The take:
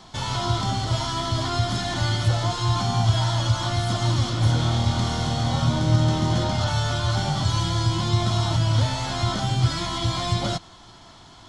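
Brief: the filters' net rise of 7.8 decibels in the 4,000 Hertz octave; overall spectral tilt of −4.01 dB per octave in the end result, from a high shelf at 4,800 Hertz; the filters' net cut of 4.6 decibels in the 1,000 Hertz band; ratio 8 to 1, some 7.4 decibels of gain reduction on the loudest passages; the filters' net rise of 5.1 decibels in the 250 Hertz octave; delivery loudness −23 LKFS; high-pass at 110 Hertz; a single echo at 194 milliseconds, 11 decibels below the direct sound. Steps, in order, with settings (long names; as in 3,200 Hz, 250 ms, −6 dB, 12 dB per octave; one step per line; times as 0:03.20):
high-pass filter 110 Hz
parametric band 250 Hz +8 dB
parametric band 1,000 Hz −7.5 dB
parametric band 4,000 Hz +7 dB
high-shelf EQ 4,800 Hz +6 dB
downward compressor 8 to 1, threshold −22 dBFS
single-tap delay 194 ms −11 dB
level +1.5 dB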